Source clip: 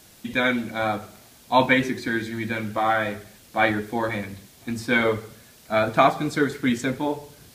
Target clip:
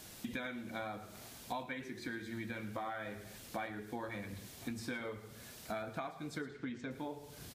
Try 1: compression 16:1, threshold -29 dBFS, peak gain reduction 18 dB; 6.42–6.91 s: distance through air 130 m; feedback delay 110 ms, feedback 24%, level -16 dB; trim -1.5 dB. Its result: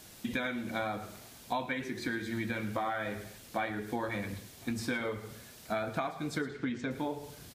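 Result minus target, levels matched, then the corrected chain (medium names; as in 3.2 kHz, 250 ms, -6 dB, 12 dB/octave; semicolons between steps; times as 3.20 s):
compression: peak gain reduction -7.5 dB
compression 16:1, threshold -37 dBFS, peak gain reduction 25.5 dB; 6.42–6.91 s: distance through air 130 m; feedback delay 110 ms, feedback 24%, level -16 dB; trim -1.5 dB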